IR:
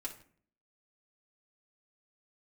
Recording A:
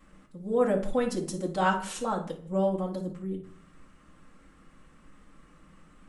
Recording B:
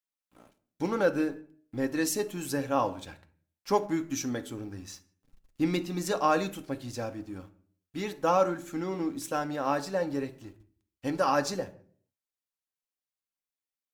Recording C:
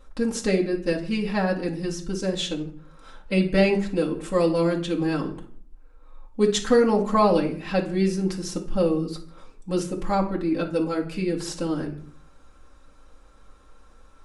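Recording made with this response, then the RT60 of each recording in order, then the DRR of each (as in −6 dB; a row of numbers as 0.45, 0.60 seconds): C; 0.50, 0.50, 0.50 seconds; −7.5, 6.0, −2.5 decibels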